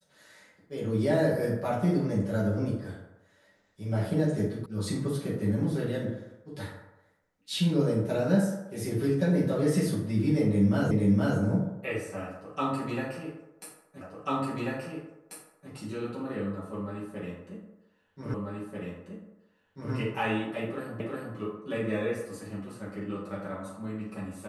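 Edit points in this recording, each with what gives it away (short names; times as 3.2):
4.66 sound cut off
10.91 repeat of the last 0.47 s
14.01 repeat of the last 1.69 s
18.34 repeat of the last 1.59 s
21 repeat of the last 0.36 s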